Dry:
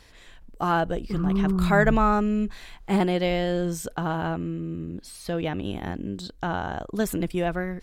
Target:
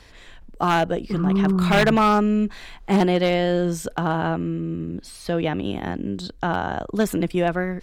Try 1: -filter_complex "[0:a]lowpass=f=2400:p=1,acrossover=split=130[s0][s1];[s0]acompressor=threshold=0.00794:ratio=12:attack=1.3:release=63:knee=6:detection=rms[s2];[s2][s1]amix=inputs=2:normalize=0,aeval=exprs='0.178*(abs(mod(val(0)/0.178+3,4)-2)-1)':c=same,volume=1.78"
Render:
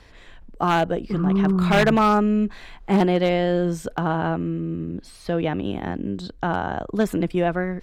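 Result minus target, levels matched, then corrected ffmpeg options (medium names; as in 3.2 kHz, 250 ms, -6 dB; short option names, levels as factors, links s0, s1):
8 kHz band -4.5 dB
-filter_complex "[0:a]lowpass=f=6100:p=1,acrossover=split=130[s0][s1];[s0]acompressor=threshold=0.00794:ratio=12:attack=1.3:release=63:knee=6:detection=rms[s2];[s2][s1]amix=inputs=2:normalize=0,aeval=exprs='0.178*(abs(mod(val(0)/0.178+3,4)-2)-1)':c=same,volume=1.78"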